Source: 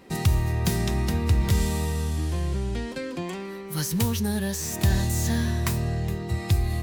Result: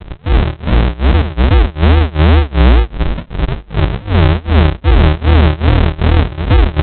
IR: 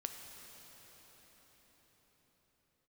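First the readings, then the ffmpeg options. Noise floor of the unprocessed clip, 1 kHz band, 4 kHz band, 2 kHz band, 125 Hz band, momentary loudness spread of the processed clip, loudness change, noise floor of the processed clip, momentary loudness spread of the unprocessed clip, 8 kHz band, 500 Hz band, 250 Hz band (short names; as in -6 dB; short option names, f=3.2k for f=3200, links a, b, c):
-36 dBFS, +16.0 dB, +11.5 dB, +14.0 dB, +13.5 dB, 7 LU, +13.5 dB, -34 dBFS, 8 LU, under -40 dB, +14.0 dB, +11.5 dB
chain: -filter_complex "[0:a]areverse,acompressor=threshold=-31dB:ratio=6,areverse,aeval=exprs='val(0)+0.00251*(sin(2*PI*50*n/s)+sin(2*PI*2*50*n/s)/2+sin(2*PI*3*50*n/s)/3+sin(2*PI*4*50*n/s)/4+sin(2*PI*5*50*n/s)/5)':c=same,asubboost=boost=10:cutoff=77[a];[1:a]atrim=start_sample=2205,atrim=end_sample=3087[b];[a][b]afir=irnorm=-1:irlink=0,aresample=8000,acrusher=samples=27:mix=1:aa=0.000001:lfo=1:lforange=16.2:lforate=2.4,aresample=44100,tremolo=f=2.6:d=0.97,alimiter=level_in=27dB:limit=-1dB:release=50:level=0:latency=1,volume=-1dB"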